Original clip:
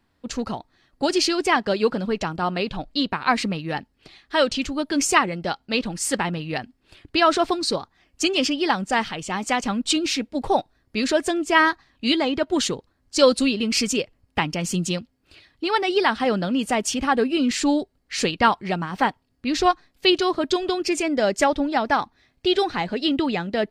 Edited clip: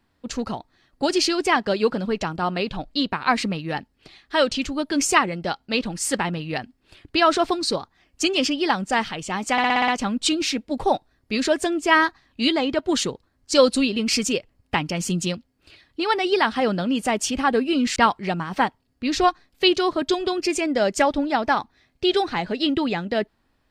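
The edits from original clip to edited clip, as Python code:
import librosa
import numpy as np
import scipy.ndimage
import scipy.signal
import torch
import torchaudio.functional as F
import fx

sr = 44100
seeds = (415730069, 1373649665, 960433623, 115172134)

y = fx.edit(x, sr, fx.stutter(start_s=9.52, slice_s=0.06, count=7),
    fx.cut(start_s=17.6, length_s=0.78), tone=tone)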